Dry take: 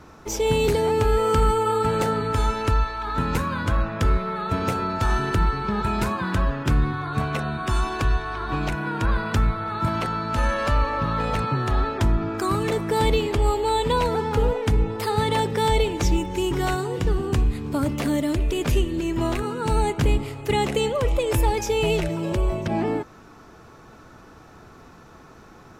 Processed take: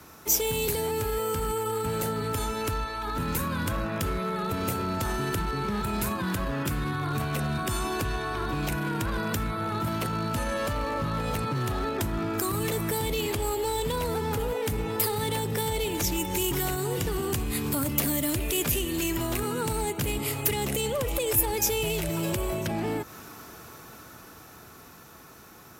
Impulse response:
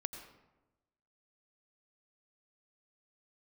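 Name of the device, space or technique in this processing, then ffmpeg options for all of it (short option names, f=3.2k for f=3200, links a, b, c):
FM broadcast chain: -filter_complex "[0:a]highpass=55,bass=f=250:g=0,treble=f=4k:g=-12,dynaudnorm=f=270:g=21:m=11.5dB,acrossover=split=130|620[a][b][c];[a]acompressor=threshold=-27dB:ratio=4[d];[b]acompressor=threshold=-25dB:ratio=4[e];[c]acompressor=threshold=-33dB:ratio=4[f];[d][e][f]amix=inputs=3:normalize=0,aemphasis=mode=production:type=75fm,alimiter=limit=-17dB:level=0:latency=1:release=22,asoftclip=type=hard:threshold=-20dB,lowpass=f=15k:w=0.5412,lowpass=f=15k:w=1.3066,aemphasis=mode=production:type=75fm,volume=-3dB"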